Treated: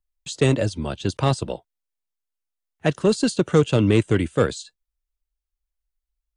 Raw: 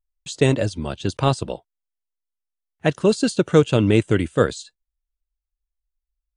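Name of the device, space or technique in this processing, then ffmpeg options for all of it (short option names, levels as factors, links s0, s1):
one-band saturation: -filter_complex "[0:a]acrossover=split=220|4900[s0][s1][s2];[s1]asoftclip=type=tanh:threshold=0.282[s3];[s0][s3][s2]amix=inputs=3:normalize=0"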